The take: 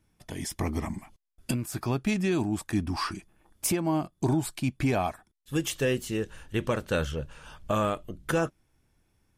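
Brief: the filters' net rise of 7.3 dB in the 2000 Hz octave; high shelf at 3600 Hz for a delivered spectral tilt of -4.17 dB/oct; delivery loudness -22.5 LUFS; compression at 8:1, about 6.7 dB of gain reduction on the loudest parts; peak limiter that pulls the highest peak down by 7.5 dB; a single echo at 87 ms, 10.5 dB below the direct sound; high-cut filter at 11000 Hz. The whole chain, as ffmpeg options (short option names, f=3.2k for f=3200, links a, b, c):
-af "lowpass=11k,equalizer=f=2k:t=o:g=7.5,highshelf=f=3.6k:g=7.5,acompressor=threshold=-27dB:ratio=8,alimiter=limit=-22.5dB:level=0:latency=1,aecho=1:1:87:0.299,volume=11.5dB"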